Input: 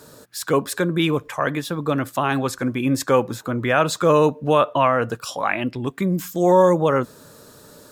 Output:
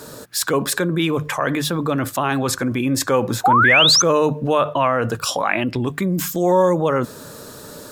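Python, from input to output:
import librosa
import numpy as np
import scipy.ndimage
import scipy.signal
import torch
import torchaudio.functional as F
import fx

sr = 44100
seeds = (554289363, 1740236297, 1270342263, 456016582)

p1 = fx.hum_notches(x, sr, base_hz=50, count=3)
p2 = fx.over_compress(p1, sr, threshold_db=-29.0, ratio=-1.0)
p3 = p1 + (p2 * 10.0 ** (-0.5 / 20.0))
p4 = fx.spec_paint(p3, sr, seeds[0], shape='rise', start_s=3.44, length_s=0.58, low_hz=700.0, high_hz=6500.0, level_db=-12.0)
y = p4 * 10.0 ** (-1.5 / 20.0)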